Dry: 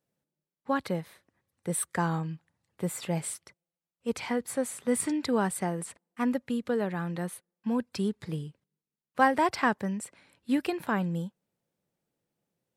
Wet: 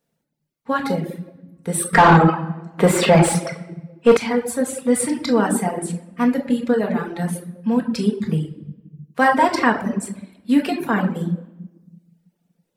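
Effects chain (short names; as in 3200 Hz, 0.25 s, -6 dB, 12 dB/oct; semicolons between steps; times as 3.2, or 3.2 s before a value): shoebox room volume 670 m³, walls mixed, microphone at 1.7 m; reverb removal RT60 0.88 s; 1.93–4.17 overdrive pedal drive 27 dB, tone 1500 Hz, clips at -6.5 dBFS; gain +6.5 dB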